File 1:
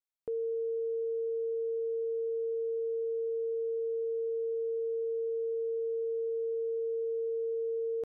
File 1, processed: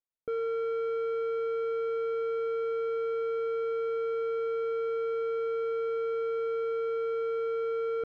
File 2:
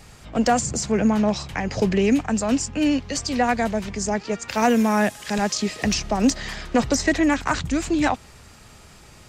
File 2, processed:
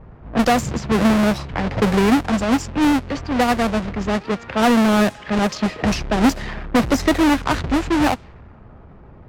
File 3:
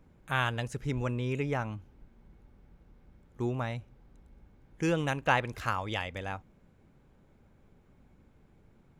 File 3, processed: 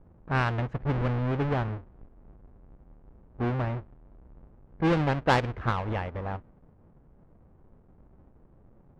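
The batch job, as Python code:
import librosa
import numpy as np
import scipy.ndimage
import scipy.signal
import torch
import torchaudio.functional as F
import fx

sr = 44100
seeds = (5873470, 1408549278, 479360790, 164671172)

y = fx.halfwave_hold(x, sr)
y = fx.high_shelf(y, sr, hz=4600.0, db=-10.0)
y = fx.env_lowpass(y, sr, base_hz=1000.0, full_db=-13.5)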